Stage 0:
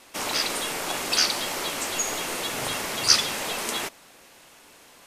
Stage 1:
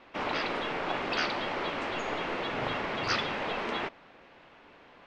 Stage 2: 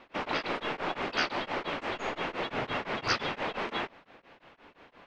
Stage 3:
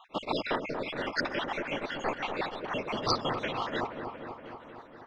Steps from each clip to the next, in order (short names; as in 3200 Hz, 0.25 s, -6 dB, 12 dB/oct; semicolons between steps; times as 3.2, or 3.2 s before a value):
Bessel low-pass 2200 Hz, order 4
beating tremolo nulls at 5.8 Hz; gain +2 dB
random spectral dropouts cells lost 61%; notches 50/100 Hz; dark delay 0.237 s, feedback 69%, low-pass 1400 Hz, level -6 dB; gain +3.5 dB